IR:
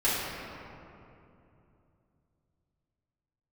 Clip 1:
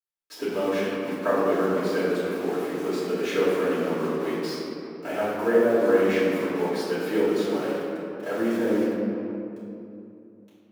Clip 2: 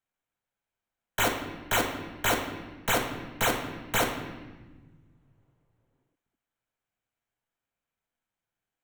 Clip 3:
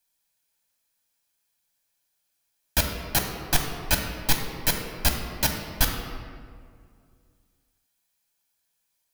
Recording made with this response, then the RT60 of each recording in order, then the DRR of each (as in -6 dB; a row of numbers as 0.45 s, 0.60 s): 1; 2.8 s, 1.3 s, 2.2 s; -12.0 dB, 1.5 dB, 2.5 dB